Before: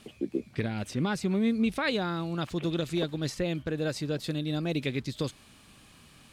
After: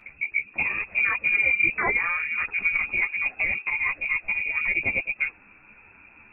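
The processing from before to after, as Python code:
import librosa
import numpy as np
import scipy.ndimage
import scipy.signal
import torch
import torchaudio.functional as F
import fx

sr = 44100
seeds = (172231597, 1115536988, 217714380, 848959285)

y = fx.freq_invert(x, sr, carrier_hz=2600)
y = fx.ensemble(y, sr)
y = F.gain(torch.from_numpy(y), 7.5).numpy()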